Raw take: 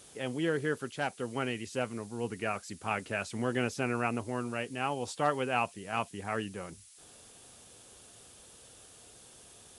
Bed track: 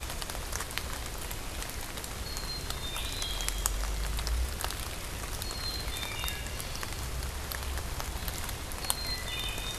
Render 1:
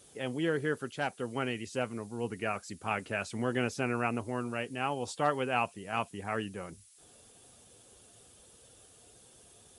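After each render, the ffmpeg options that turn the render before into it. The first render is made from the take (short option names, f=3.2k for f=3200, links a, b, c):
-af "afftdn=nr=6:nf=-56"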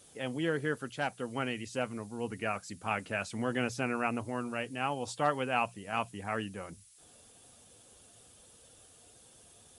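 -af "equalizer=f=390:t=o:w=0.33:g=-5,bandreject=f=60:t=h:w=6,bandreject=f=120:t=h:w=6,bandreject=f=180:t=h:w=6"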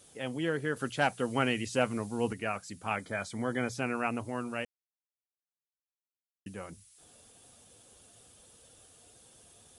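-filter_complex "[0:a]asettb=1/sr,asplit=3[a][b][c];[a]atrim=end=0.764[d];[b]atrim=start=0.76:end=2.33,asetpts=PTS-STARTPTS,afade=t=in:d=0.004:c=qsin,afade=t=out:st=1.566:d=0.004:c=qsin,acontrast=46[e];[c]atrim=start=2.326[f];[d][e]acrossfade=d=0.004:c1=hsin:c2=qsin[g];[g][f]acrossfade=d=0.004:c1=qsin:c2=hsin,asettb=1/sr,asplit=3[h][i][j];[h]atrim=end=2.964[k];[i]atrim=start=2.96:end=3.75,asetpts=PTS-STARTPTS,afade=t=in:d=0.004:c=qsin,afade=t=out:st=0.786:d=0.004:c=qsin,asuperstop=centerf=2700:order=20:qfactor=5.3[l];[j]atrim=start=3.746[m];[k][l]acrossfade=d=0.004:c1=hsin:c2=qsin[n];[n][m]acrossfade=d=0.004:c1=qsin:c2=hsin,asplit=3[o][p][q];[o]atrim=end=4.65,asetpts=PTS-STARTPTS,afade=t=out:st=4.646:d=0.004:c=hsin[r];[p]atrim=start=4.65:end=6.46,asetpts=PTS-STARTPTS,volume=0[s];[q]atrim=start=6.46,asetpts=PTS-STARTPTS,afade=t=in:d=0.004:c=hsin[t];[r][s][t]concat=n=3:v=0:a=1"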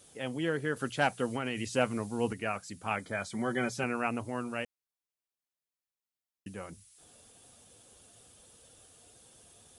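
-filter_complex "[0:a]asettb=1/sr,asplit=3[a][b][c];[a]atrim=end=1.294[d];[b]atrim=start=1.29:end=1.72,asetpts=PTS-STARTPTS,afade=t=in:d=0.004:c=qsin,afade=t=out:st=0.426:d=0.004:c=qsin,acompressor=threshold=-28dB:ratio=6:attack=3.2:release=140:knee=1:detection=peak[e];[c]atrim=start=1.716[f];[d][e]acrossfade=d=0.004:c1=hsin:c2=qsin[g];[g][f]acrossfade=d=0.004:c1=qsin:c2=hsin,asettb=1/sr,asplit=3[h][i][j];[h]atrim=end=3.324[k];[i]atrim=start=3.32:end=3.84,asetpts=PTS-STARTPTS,afade=t=in:d=0.004:c=qsin,afade=t=out:st=0.516:d=0.004:c=qsin,aecho=1:1:5.3:0.62,atrim=end_sample=22932[l];[j]atrim=start=3.836[m];[k][l]acrossfade=d=0.004:c1=hsin:c2=qsin[n];[n][m]acrossfade=d=0.004:c1=qsin:c2=hsin"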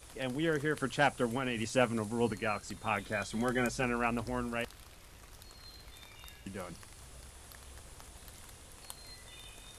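-filter_complex "[1:a]volume=-17dB[a];[0:a][a]amix=inputs=2:normalize=0"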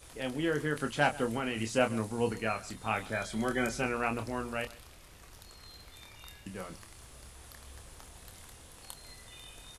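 -filter_complex "[0:a]asplit=2[a][b];[b]adelay=27,volume=-7dB[c];[a][c]amix=inputs=2:normalize=0,aecho=1:1:134:0.1"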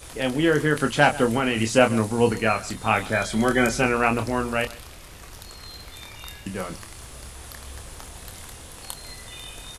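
-af "volume=11dB,alimiter=limit=-3dB:level=0:latency=1"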